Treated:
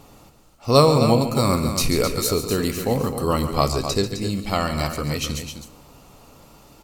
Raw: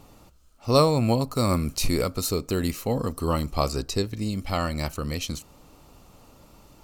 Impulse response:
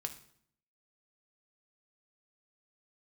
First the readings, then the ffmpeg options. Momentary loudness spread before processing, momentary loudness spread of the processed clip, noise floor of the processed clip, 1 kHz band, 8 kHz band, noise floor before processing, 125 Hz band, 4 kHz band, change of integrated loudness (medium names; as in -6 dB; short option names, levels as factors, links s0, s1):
10 LU, 10 LU, -51 dBFS, +5.5 dB, +5.5 dB, -54 dBFS, +3.5 dB, +5.5 dB, +4.5 dB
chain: -filter_complex "[0:a]lowshelf=f=180:g=-4,aecho=1:1:139.9|259.5:0.282|0.355,asplit=2[s0][s1];[1:a]atrim=start_sample=2205[s2];[s1][s2]afir=irnorm=-1:irlink=0,volume=1.41[s3];[s0][s3]amix=inputs=2:normalize=0,volume=0.794"